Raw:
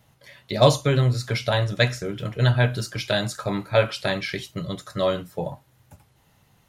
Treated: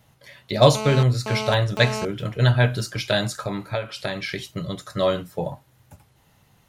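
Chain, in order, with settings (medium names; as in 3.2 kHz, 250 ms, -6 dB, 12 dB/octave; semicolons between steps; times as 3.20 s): 0.75–2.05 s: mobile phone buzz -30 dBFS; 3.37–4.86 s: compression 8:1, threshold -25 dBFS, peak gain reduction 12.5 dB; trim +1.5 dB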